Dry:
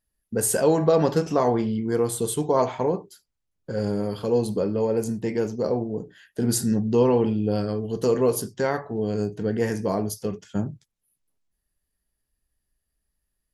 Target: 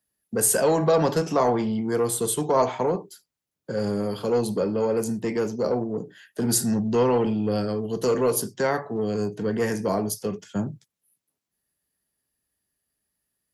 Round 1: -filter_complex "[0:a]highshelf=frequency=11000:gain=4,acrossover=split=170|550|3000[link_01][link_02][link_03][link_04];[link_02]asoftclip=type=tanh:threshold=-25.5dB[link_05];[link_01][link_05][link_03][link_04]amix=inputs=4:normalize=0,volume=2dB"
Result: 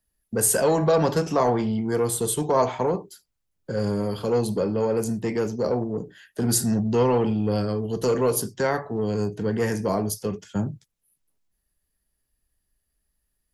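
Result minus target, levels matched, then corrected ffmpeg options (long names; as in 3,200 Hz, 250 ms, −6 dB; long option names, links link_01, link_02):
125 Hz band +3.0 dB
-filter_complex "[0:a]highpass=130,highshelf=frequency=11000:gain=4,acrossover=split=170|550|3000[link_01][link_02][link_03][link_04];[link_02]asoftclip=type=tanh:threshold=-25.5dB[link_05];[link_01][link_05][link_03][link_04]amix=inputs=4:normalize=0,volume=2dB"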